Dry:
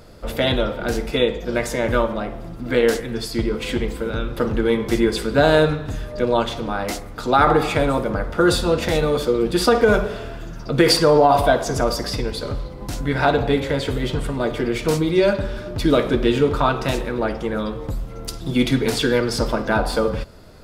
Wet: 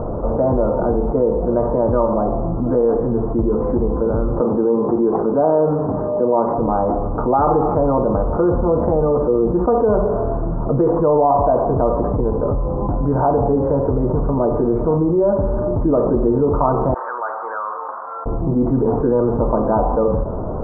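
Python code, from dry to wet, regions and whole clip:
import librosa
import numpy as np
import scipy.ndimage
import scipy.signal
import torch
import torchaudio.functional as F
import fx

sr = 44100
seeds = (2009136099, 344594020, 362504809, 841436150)

y = fx.chain(x, sr, fx.highpass(hz=190.0, slope=12),
    fx.resample_linear(factor=8), at=(4.41, 6.58))
y = fx.chain(y, sr, fx.ladder_highpass(hz=1300.0, resonance_pct=55),
    fx.tilt_eq(slope=-3.0), at=(16.94, 18.26))
y = scipy.signal.sosfilt(scipy.signal.butter(8, 1100.0, 'lowpass', fs=sr, output='sos'), y)
y = fx.low_shelf(y, sr, hz=430.0, db=-4.5)
y = fx.env_flatten(y, sr, amount_pct=70)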